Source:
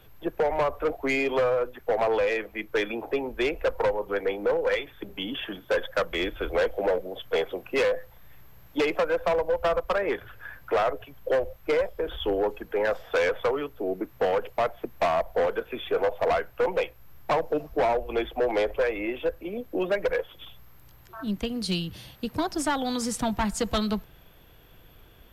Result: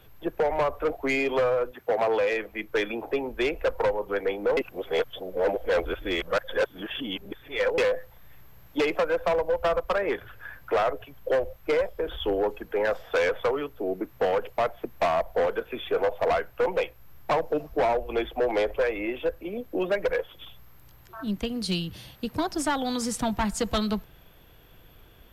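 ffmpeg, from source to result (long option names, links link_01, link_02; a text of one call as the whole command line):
ffmpeg -i in.wav -filter_complex "[0:a]asettb=1/sr,asplit=3[link_01][link_02][link_03];[link_01]atrim=end=1.714[link_04];[link_02]atrim=start=1.71:end=2.33,asetpts=PTS-STARTPTS,afade=type=in:duration=0.004:curve=qsin,afade=type=out:start_time=0.616:duration=0.004:curve=qsin,highpass=96[link_05];[link_03]atrim=start=2.326[link_06];[link_04][link_05]acrossfade=duration=0.004:curve1=hsin:curve2=qsin[link_07];[link_07][link_06]acrossfade=duration=0.004:curve1=qsin:curve2=hsin,asplit=3[link_08][link_09][link_10];[link_08]atrim=end=4.572[link_11];[link_09]atrim=start=4.568:end=7.782,asetpts=PTS-STARTPTS,areverse[link_12];[link_10]atrim=start=7.778[link_13];[link_11][link_12]acrossfade=duration=0.004:curve1=hsin:curve2=hsin[link_14];[link_14][link_13]acrossfade=duration=0.004:curve1=hsin:curve2=hsin" out.wav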